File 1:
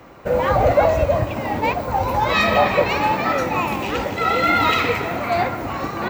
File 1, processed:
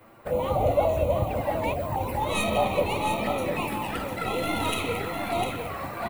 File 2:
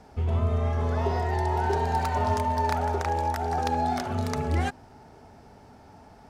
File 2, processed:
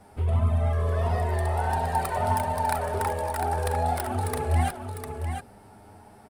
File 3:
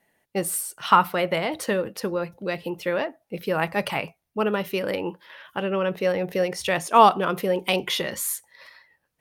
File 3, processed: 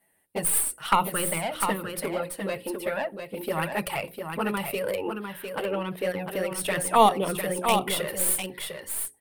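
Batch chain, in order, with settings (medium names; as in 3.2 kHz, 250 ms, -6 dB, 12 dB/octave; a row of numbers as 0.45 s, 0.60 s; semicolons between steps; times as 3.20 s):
tracing distortion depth 0.065 ms; touch-sensitive flanger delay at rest 10.8 ms, full sweep at -16.5 dBFS; resonant high shelf 7.7 kHz +7 dB, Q 3; hum notches 60/120/180/240/300/360/420/480/540 Hz; on a send: delay 702 ms -6.5 dB; on the sum: normalise loudness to -27 LUFS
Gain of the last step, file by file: -5.5 dB, +3.0 dB, 0.0 dB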